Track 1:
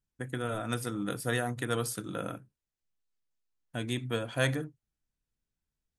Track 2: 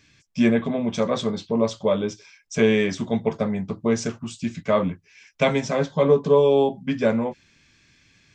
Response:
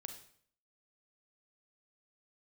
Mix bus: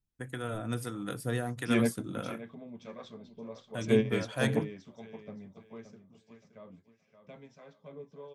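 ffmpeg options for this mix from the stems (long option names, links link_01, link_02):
-filter_complex "[0:a]lowshelf=frequency=390:gain=3,asoftclip=type=tanh:threshold=-13.5dB,volume=-1dB,asplit=2[link_01][link_02];[1:a]lowpass=5500,adelay=1300,volume=-5dB,afade=type=out:start_time=5.13:duration=0.2:silence=0.421697,asplit=2[link_03][link_04];[link_04]volume=-15.5dB[link_05];[link_02]apad=whole_len=425464[link_06];[link_03][link_06]sidechaingate=range=-44dB:threshold=-33dB:ratio=16:detection=peak[link_07];[link_05]aecho=0:1:572|1144|1716|2288:1|0.29|0.0841|0.0244[link_08];[link_01][link_07][link_08]amix=inputs=3:normalize=0,acrossover=split=540[link_09][link_10];[link_09]aeval=exprs='val(0)*(1-0.5/2+0.5/2*cos(2*PI*1.5*n/s))':channel_layout=same[link_11];[link_10]aeval=exprs='val(0)*(1-0.5/2-0.5/2*cos(2*PI*1.5*n/s))':channel_layout=same[link_12];[link_11][link_12]amix=inputs=2:normalize=0"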